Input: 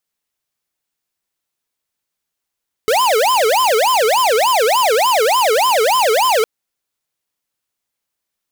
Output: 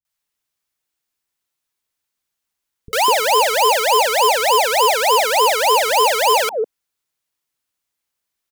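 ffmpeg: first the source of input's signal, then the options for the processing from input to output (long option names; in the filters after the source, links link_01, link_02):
-f lavfi -i "aevalsrc='0.211*(2*lt(mod((733*t-307/(2*PI*3.4)*sin(2*PI*3.4*t)),1),0.5)-1)':duration=3.56:sample_rate=44100"
-filter_complex "[0:a]acrossover=split=180|540[link_01][link_02][link_03];[link_03]adelay=50[link_04];[link_02]adelay=200[link_05];[link_01][link_05][link_04]amix=inputs=3:normalize=0"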